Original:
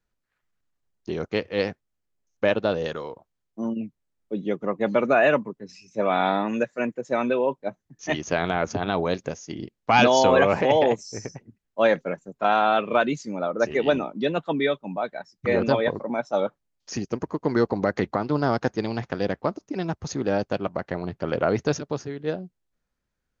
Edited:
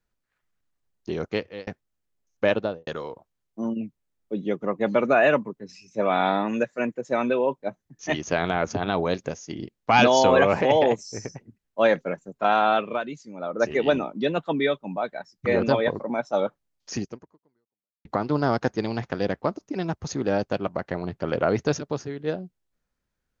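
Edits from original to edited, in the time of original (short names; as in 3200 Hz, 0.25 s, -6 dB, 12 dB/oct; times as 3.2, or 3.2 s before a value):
1.31–1.67 fade out
2.54–2.87 studio fade out
12.73–13.63 dip -9.5 dB, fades 0.29 s
17.03–18.05 fade out exponential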